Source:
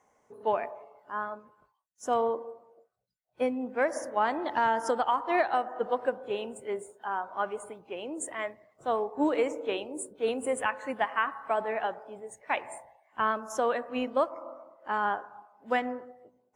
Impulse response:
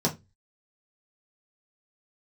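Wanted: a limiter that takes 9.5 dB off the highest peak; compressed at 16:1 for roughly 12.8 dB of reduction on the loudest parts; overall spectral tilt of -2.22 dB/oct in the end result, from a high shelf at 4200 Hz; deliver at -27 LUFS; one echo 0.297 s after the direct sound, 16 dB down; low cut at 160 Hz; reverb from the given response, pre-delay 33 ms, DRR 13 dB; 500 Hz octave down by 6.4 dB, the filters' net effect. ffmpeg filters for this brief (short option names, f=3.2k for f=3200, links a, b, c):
-filter_complex "[0:a]highpass=160,equalizer=f=500:t=o:g=-8,highshelf=f=4.2k:g=8.5,acompressor=threshold=-36dB:ratio=16,alimiter=level_in=9dB:limit=-24dB:level=0:latency=1,volume=-9dB,aecho=1:1:297:0.158,asplit=2[a][b];[1:a]atrim=start_sample=2205,adelay=33[c];[b][c]afir=irnorm=-1:irlink=0,volume=-23dB[d];[a][d]amix=inputs=2:normalize=0,volume=17dB"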